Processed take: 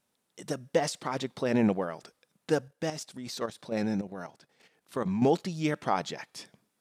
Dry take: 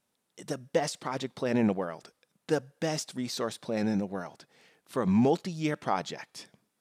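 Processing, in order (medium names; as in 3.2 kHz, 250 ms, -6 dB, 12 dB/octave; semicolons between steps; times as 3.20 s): 2.68–5.22 s: level held to a coarse grid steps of 10 dB; trim +1 dB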